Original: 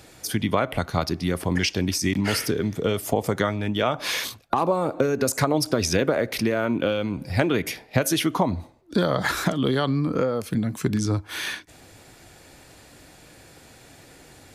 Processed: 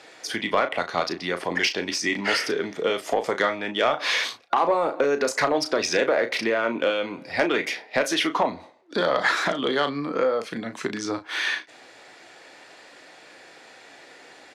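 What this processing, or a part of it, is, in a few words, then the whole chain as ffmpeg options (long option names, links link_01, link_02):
intercom: -filter_complex "[0:a]highpass=440,lowpass=4900,equalizer=frequency=1900:width_type=o:width=0.28:gain=4,asoftclip=type=tanh:threshold=-14dB,asplit=2[link_01][link_02];[link_02]adelay=35,volume=-9dB[link_03];[link_01][link_03]amix=inputs=2:normalize=0,volume=3.5dB"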